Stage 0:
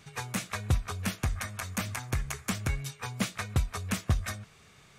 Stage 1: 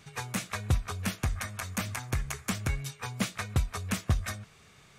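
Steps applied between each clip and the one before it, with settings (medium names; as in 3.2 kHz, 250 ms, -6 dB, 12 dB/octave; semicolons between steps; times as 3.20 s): no audible change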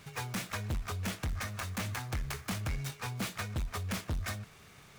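saturation -31.5 dBFS, distortion -6 dB; delay time shaken by noise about 3.4 kHz, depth 0.032 ms; trim +1.5 dB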